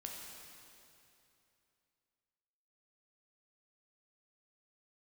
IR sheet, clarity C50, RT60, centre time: 0.5 dB, 2.8 s, 0.118 s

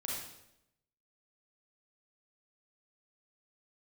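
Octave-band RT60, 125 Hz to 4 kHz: 1.0, 0.95, 0.90, 0.75, 0.75, 0.70 s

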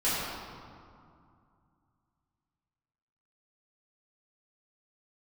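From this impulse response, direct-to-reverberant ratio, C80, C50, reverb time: -12.0 dB, -1.5 dB, -3.5 dB, 2.4 s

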